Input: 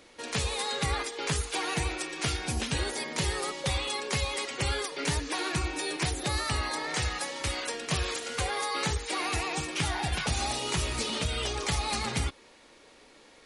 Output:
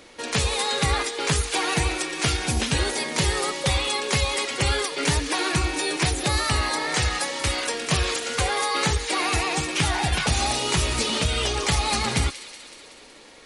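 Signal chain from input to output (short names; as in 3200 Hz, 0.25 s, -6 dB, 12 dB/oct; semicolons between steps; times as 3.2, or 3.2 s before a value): thin delay 0.186 s, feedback 65%, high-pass 2100 Hz, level -12 dB; gain +7 dB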